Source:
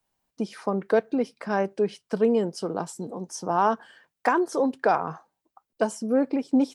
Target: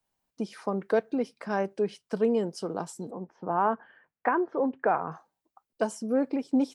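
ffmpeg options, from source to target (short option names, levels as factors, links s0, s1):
-filter_complex "[0:a]asettb=1/sr,asplit=3[s0][s1][s2];[s0]atrim=end=3.114[s3];[s1]atrim=start=3.11:end=5.12,asetpts=PTS-STARTPTS,afade=t=in:d=0.004:c=qsin,afade=t=out:st=2.006:d=0.004:c=qsin,lowpass=f=2300:w=0.5412,lowpass=f=2300:w=1.3066[s4];[s2]atrim=start=5.116[s5];[s3][s4]acrossfade=d=0.004:c1=hsin:c2=qsin[s6];[s6][s5]acrossfade=d=0.004:c1=qsin:c2=hsin,volume=0.668"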